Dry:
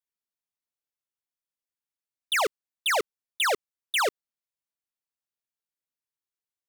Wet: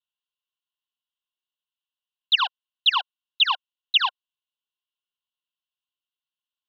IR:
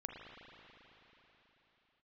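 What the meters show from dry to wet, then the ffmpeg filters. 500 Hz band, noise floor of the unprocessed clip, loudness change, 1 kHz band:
under -25 dB, under -85 dBFS, +5.0 dB, +1.5 dB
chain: -filter_complex "[0:a]asplit=3[s0][s1][s2];[s0]bandpass=f=730:t=q:w=8,volume=1[s3];[s1]bandpass=f=1090:t=q:w=8,volume=0.501[s4];[s2]bandpass=f=2440:t=q:w=8,volume=0.355[s5];[s3][s4][s5]amix=inputs=3:normalize=0,highpass=f=230:t=q:w=0.5412,highpass=f=230:t=q:w=1.307,lowpass=f=3500:t=q:w=0.5176,lowpass=f=3500:t=q:w=0.7071,lowpass=f=3500:t=q:w=1.932,afreqshift=330,aexciter=amount=14.2:drive=3.2:freq=2900,volume=2.37"

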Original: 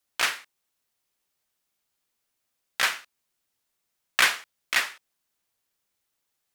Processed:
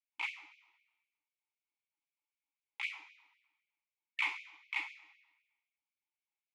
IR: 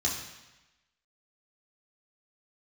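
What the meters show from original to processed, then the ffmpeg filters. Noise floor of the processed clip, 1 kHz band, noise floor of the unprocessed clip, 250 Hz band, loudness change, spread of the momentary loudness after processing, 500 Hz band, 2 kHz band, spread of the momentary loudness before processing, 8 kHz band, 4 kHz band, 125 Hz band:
under -85 dBFS, -16.0 dB, -80 dBFS, under -15 dB, -14.0 dB, 20 LU, under -25 dB, -13.0 dB, 17 LU, -30.5 dB, -18.0 dB, no reading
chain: -filter_complex "[0:a]asplit=3[s0][s1][s2];[s0]bandpass=f=300:t=q:w=8,volume=1[s3];[s1]bandpass=f=870:t=q:w=8,volume=0.501[s4];[s2]bandpass=f=2240:t=q:w=8,volume=0.355[s5];[s3][s4][s5]amix=inputs=3:normalize=0,asplit=2[s6][s7];[1:a]atrim=start_sample=2205[s8];[s7][s8]afir=irnorm=-1:irlink=0,volume=0.224[s9];[s6][s9]amix=inputs=2:normalize=0,afftfilt=real='re*gte(b*sr/1024,290*pow(2200/290,0.5+0.5*sin(2*PI*3.9*pts/sr)))':imag='im*gte(b*sr/1024,290*pow(2200/290,0.5+0.5*sin(2*PI*3.9*pts/sr)))':win_size=1024:overlap=0.75,volume=1.19"

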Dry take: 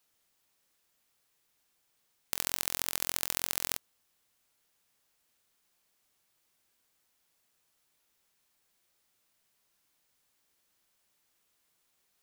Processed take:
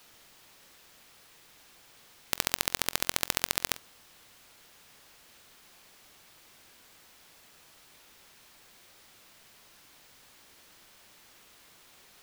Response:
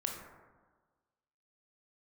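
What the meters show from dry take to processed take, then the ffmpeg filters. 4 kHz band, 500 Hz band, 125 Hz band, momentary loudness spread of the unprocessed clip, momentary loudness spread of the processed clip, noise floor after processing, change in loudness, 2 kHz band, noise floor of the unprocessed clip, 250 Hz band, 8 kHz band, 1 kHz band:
+5.5 dB, +6.5 dB, +6.5 dB, 5 LU, 6 LU, -58 dBFS, +2.5 dB, +6.5 dB, -75 dBFS, +6.5 dB, +1.5 dB, +6.5 dB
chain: -filter_complex "[0:a]aeval=exprs='0.891*(cos(1*acos(clip(val(0)/0.891,-1,1)))-cos(1*PI/2))+0.316*(cos(4*acos(clip(val(0)/0.891,-1,1)))-cos(4*PI/2))':c=same,acrossover=split=5500[s0][s1];[s0]acontrast=75[s2];[s2][s1]amix=inputs=2:normalize=0,alimiter=level_in=5.96:limit=0.891:release=50:level=0:latency=1,volume=0.891"

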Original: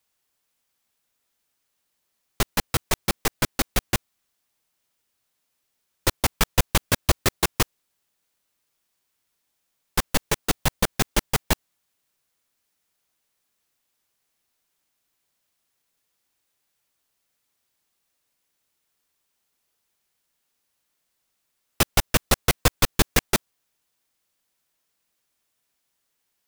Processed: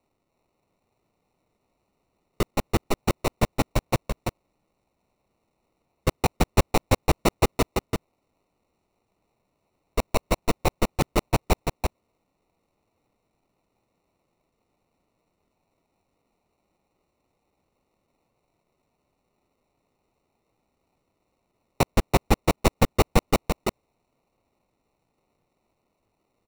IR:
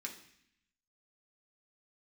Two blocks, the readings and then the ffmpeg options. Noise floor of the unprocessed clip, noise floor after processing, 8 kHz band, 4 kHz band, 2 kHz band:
-76 dBFS, -76 dBFS, -8.5 dB, -6.5 dB, -4.5 dB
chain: -filter_complex "[0:a]acrusher=samples=27:mix=1:aa=0.000001,asoftclip=type=tanh:threshold=0.501,asplit=2[s0][s1];[s1]aecho=0:1:333:0.631[s2];[s0][s2]amix=inputs=2:normalize=0"

